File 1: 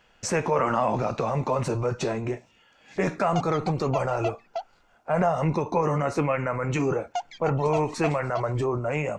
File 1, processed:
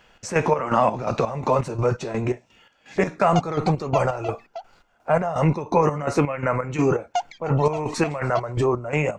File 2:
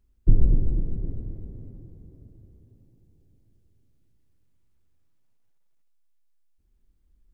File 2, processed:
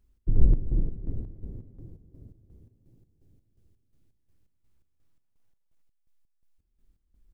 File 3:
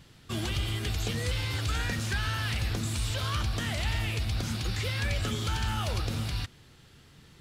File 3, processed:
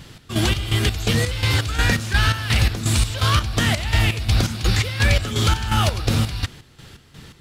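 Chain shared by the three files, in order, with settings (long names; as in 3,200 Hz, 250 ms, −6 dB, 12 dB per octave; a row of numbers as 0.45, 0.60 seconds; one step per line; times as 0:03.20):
square-wave tremolo 2.8 Hz, depth 65%, duty 50%
normalise the peak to −6 dBFS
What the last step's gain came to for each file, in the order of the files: +5.5, +0.5, +13.0 decibels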